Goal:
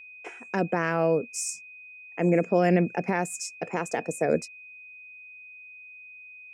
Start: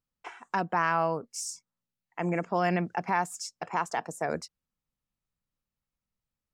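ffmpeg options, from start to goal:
-af "equalizer=f=125:t=o:w=1:g=4,equalizer=f=250:t=o:w=1:g=7,equalizer=f=500:t=o:w=1:g=11,equalizer=f=1k:t=o:w=1:g=-10,equalizer=f=2k:t=o:w=1:g=4,equalizer=f=4k:t=o:w=1:g=-5,equalizer=f=8k:t=o:w=1:g=7,aeval=exprs='val(0)+0.00631*sin(2*PI*2500*n/s)':c=same"

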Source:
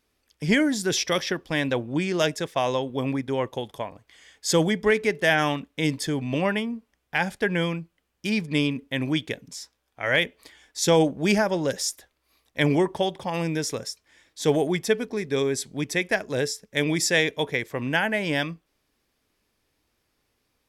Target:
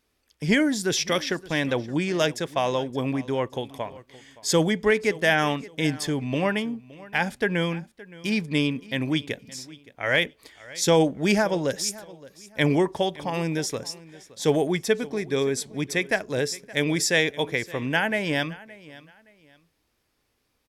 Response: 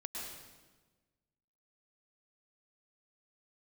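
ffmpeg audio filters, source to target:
-af "aecho=1:1:569|1138:0.1|0.028"

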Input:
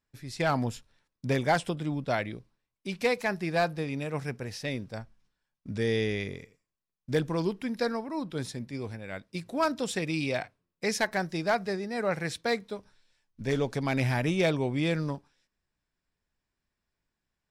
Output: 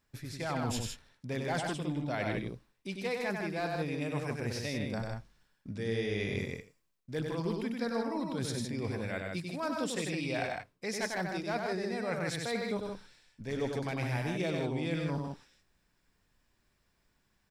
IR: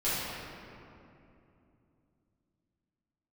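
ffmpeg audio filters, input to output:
-af "areverse,acompressor=threshold=-42dB:ratio=6,areverse,aecho=1:1:96.21|157.4:0.631|0.562,volume=8dB"

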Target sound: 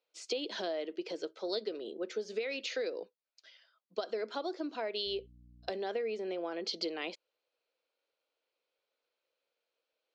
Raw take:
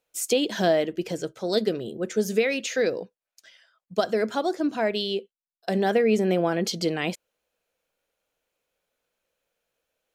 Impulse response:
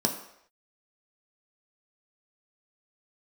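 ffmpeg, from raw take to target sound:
-filter_complex "[0:a]acompressor=threshold=-26dB:ratio=6,highpass=f=310:w=0.5412,highpass=f=310:w=1.3066,equalizer=f=730:t=q:w=4:g=-3,equalizer=f=1.7k:t=q:w=4:g=-5,equalizer=f=4.4k:t=q:w=4:g=5,lowpass=f=5.1k:w=0.5412,lowpass=f=5.1k:w=1.3066,asettb=1/sr,asplit=3[a][b][c];[a]atrim=end=5.064[d];[b]atrim=start=5.06:end=5.7,asetpts=PTS-STARTPTS,afade=t=in:d=0.004:c=qsin,afade=t=out:st=0.636:d=0.004:c=qsin,aeval=exprs='val(0)+0.00251*(sin(2*PI*60*n/s)+sin(2*PI*2*60*n/s)/2+sin(2*PI*3*60*n/s)/3+sin(2*PI*4*60*n/s)/4+sin(2*PI*5*60*n/s)/5)':c=same[e];[c]atrim=start=5.696[f];[d][e]acrossfade=d=0.004:c1=hsin:c2=qsin[g];[g][f]acrossfade=d=0.004:c1=qsin:c2=hsin,volume=-5dB"

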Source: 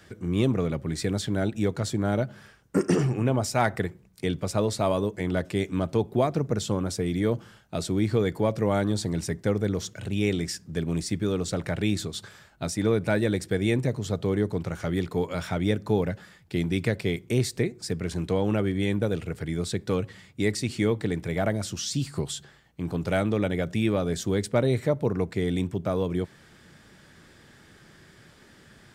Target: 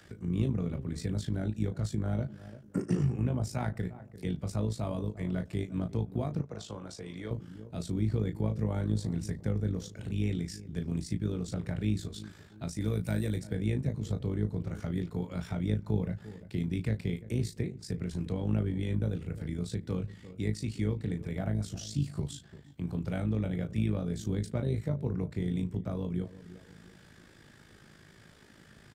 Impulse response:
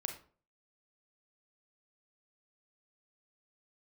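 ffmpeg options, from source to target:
-filter_complex "[0:a]asplit=3[a][b][c];[a]afade=t=out:st=12.8:d=0.02[d];[b]aemphasis=mode=production:type=75fm,afade=t=in:st=12.8:d=0.02,afade=t=out:st=13.35:d=0.02[e];[c]afade=t=in:st=13.35:d=0.02[f];[d][e][f]amix=inputs=3:normalize=0,asplit=2[g][h];[h]adelay=28,volume=-7dB[i];[g][i]amix=inputs=2:normalize=0,asplit=2[j][k];[k]adelay=345,lowpass=f=810:p=1,volume=-17dB,asplit=2[l][m];[m]adelay=345,lowpass=f=810:p=1,volume=0.35,asplit=2[n][o];[o]adelay=345,lowpass=f=810:p=1,volume=0.35[p];[j][l][n][p]amix=inputs=4:normalize=0,tremolo=f=53:d=0.621,asettb=1/sr,asplit=3[q][r][s];[q]atrim=end=6.414[t];[r]atrim=start=6.41:end=7.31,asetpts=PTS-STARTPTS,afade=t=in:d=0.004:c=qsin,afade=t=out:st=0.896:d=0.004:c=qsin,acrossover=split=450 8000:gain=0.224 1 0.224[u][v][w];[u][v][w]amix=inputs=3:normalize=0[x];[s]atrim=start=7.306[y];[t][x]acrossfade=d=0.004:c1=hsin:c2=qsin[z];[z][y]acrossfade=d=0.004:c1=qsin:c2=hsin,acrossover=split=220[aa][ab];[ab]acompressor=threshold=-59dB:ratio=1.5[ac];[aa][ac]amix=inputs=2:normalize=0"

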